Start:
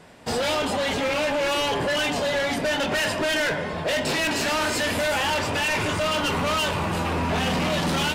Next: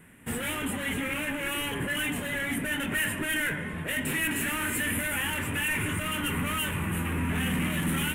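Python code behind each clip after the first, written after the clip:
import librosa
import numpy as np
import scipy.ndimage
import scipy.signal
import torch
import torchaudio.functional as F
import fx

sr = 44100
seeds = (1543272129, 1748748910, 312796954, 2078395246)

y = fx.curve_eq(x, sr, hz=(270.0, 670.0, 1900.0, 3100.0, 4800.0, 9800.0), db=(0, -16, 1, -5, -26, 9))
y = y * 10.0 ** (-2.0 / 20.0)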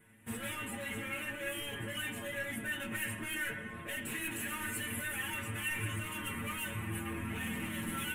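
y = fx.stiff_resonator(x, sr, f0_hz=110.0, decay_s=0.21, stiffness=0.002)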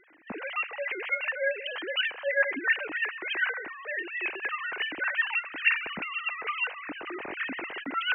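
y = fx.sine_speech(x, sr)
y = y * 10.0 ** (7.5 / 20.0)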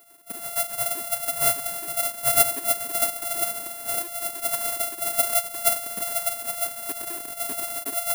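y = np.r_[np.sort(x[:len(x) // 64 * 64].reshape(-1, 64), axis=1).ravel(), x[len(x) // 64 * 64:]]
y = (np.kron(y[::4], np.eye(4)[0]) * 4)[:len(y)]
y = y * (1.0 - 0.45 / 2.0 + 0.45 / 2.0 * np.cos(2.0 * np.pi * 1.3 * (np.arange(len(y)) / sr)))
y = y * 10.0 ** (1.0 / 20.0)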